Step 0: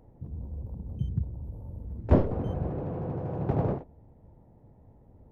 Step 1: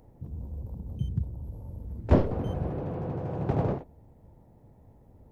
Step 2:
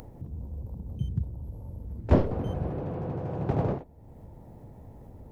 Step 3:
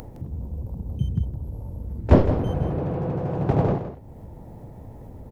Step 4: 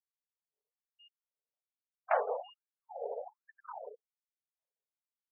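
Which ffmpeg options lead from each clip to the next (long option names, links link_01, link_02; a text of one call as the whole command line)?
ffmpeg -i in.wav -af "highshelf=frequency=2500:gain=9" out.wav
ffmpeg -i in.wav -af "acompressor=mode=upward:threshold=-37dB:ratio=2.5" out.wav
ffmpeg -i in.wav -af "aecho=1:1:163:0.282,volume=6dB" out.wav
ffmpeg -i in.wav -af "afftfilt=real='re*gte(hypot(re,im),0.0251)':imag='im*gte(hypot(re,im),0.0251)':win_size=1024:overlap=0.75,highpass=frequency=440:width_type=q:width=0.5412,highpass=frequency=440:width_type=q:width=1.307,lowpass=frequency=2800:width_type=q:width=0.5176,lowpass=frequency=2800:width_type=q:width=0.7071,lowpass=frequency=2800:width_type=q:width=1.932,afreqshift=-260,afftfilt=real='re*gte(b*sr/1024,390*pow(1700/390,0.5+0.5*sin(2*PI*1.2*pts/sr)))':imag='im*gte(b*sr/1024,390*pow(1700/390,0.5+0.5*sin(2*PI*1.2*pts/sr)))':win_size=1024:overlap=0.75,volume=2.5dB" out.wav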